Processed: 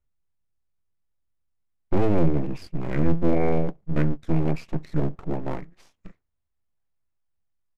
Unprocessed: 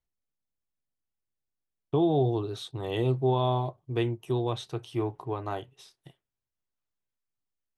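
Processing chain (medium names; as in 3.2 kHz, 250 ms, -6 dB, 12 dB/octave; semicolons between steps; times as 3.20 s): tone controls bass +9 dB, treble -9 dB; full-wave rectifier; pitch shift -7.5 st; trim +4 dB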